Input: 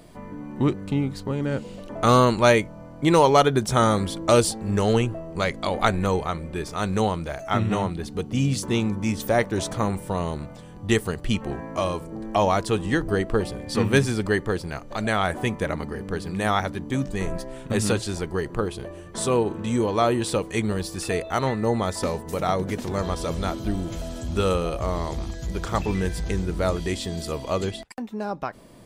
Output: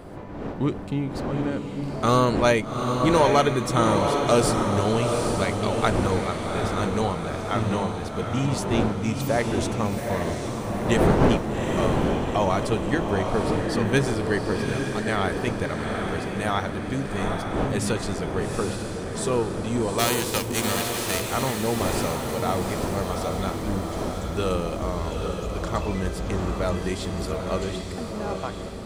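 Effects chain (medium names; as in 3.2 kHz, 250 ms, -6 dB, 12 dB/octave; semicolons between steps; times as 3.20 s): 19.98–21.29 s: formants flattened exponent 0.3; wind noise 510 Hz -30 dBFS; echo that smears into a reverb 807 ms, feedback 51%, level -4 dB; trim -3 dB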